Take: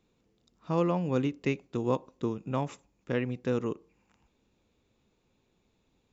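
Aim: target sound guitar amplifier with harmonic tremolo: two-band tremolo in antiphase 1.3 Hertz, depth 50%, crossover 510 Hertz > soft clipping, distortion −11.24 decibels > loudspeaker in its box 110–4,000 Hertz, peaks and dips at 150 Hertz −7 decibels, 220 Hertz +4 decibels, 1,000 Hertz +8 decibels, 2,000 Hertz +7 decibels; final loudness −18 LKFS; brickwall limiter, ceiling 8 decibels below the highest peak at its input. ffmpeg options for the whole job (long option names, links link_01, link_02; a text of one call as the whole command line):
ffmpeg -i in.wav -filter_complex "[0:a]alimiter=limit=-22.5dB:level=0:latency=1,acrossover=split=510[link_01][link_02];[link_01]aeval=exprs='val(0)*(1-0.5/2+0.5/2*cos(2*PI*1.3*n/s))':channel_layout=same[link_03];[link_02]aeval=exprs='val(0)*(1-0.5/2-0.5/2*cos(2*PI*1.3*n/s))':channel_layout=same[link_04];[link_03][link_04]amix=inputs=2:normalize=0,asoftclip=threshold=-33dB,highpass=110,equalizer=frequency=150:width_type=q:width=4:gain=-7,equalizer=frequency=220:width_type=q:width=4:gain=4,equalizer=frequency=1000:width_type=q:width=4:gain=8,equalizer=frequency=2000:width_type=q:width=4:gain=7,lowpass=frequency=4000:width=0.5412,lowpass=frequency=4000:width=1.3066,volume=22.5dB" out.wav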